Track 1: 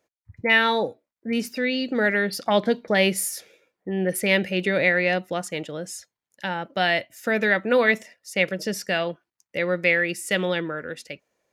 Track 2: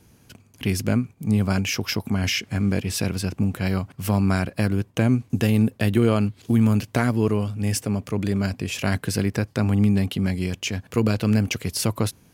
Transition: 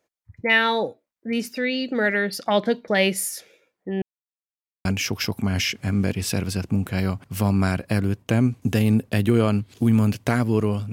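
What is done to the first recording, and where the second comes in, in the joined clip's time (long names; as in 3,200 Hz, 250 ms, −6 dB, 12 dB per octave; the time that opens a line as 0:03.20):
track 1
0:04.02–0:04.85: silence
0:04.85: continue with track 2 from 0:01.53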